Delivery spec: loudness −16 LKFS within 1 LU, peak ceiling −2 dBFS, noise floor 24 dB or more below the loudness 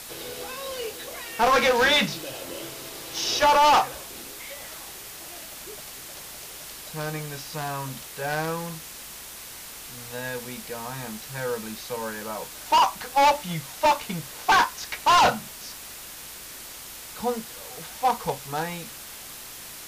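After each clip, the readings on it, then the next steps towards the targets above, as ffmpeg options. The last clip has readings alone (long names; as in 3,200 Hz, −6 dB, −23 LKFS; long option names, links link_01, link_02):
background noise floor −41 dBFS; target noise floor −49 dBFS; integrated loudness −25.0 LKFS; sample peak −13.0 dBFS; target loudness −16.0 LKFS
→ -af "afftdn=noise_reduction=8:noise_floor=-41"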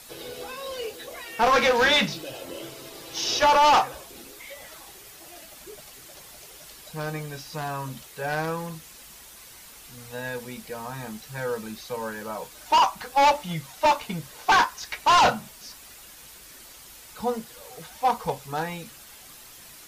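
background noise floor −47 dBFS; target noise floor −49 dBFS
→ -af "afftdn=noise_reduction=6:noise_floor=-47"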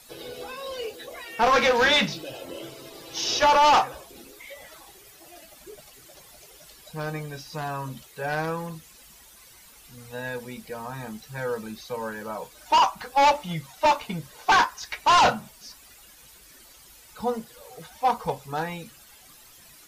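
background noise floor −51 dBFS; integrated loudness −24.5 LKFS; sample peak −13.5 dBFS; target loudness −16.0 LKFS
→ -af "volume=8.5dB"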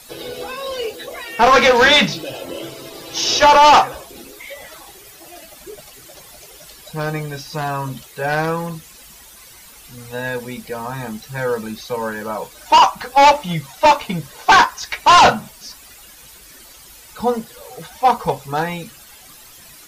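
integrated loudness −16.0 LKFS; sample peak −5.0 dBFS; background noise floor −43 dBFS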